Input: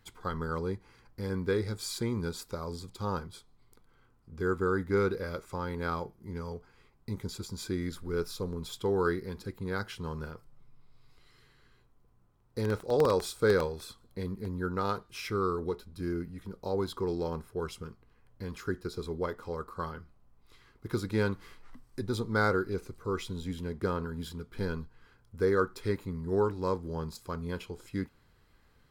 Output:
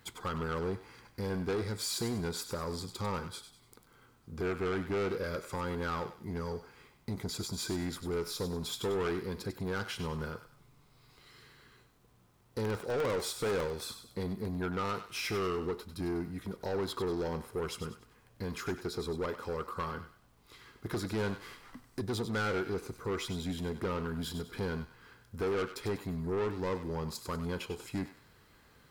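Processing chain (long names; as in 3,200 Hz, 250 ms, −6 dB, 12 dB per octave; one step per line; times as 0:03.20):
high-pass filter 110 Hz 6 dB per octave
in parallel at 0 dB: downward compressor, threshold −38 dBFS, peak gain reduction 16 dB
on the sum: bit reduction 12 bits
soft clipping −29 dBFS, distortion −8 dB
feedback echo with a high-pass in the loop 97 ms, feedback 39%, high-pass 1,100 Hz, level −9 dB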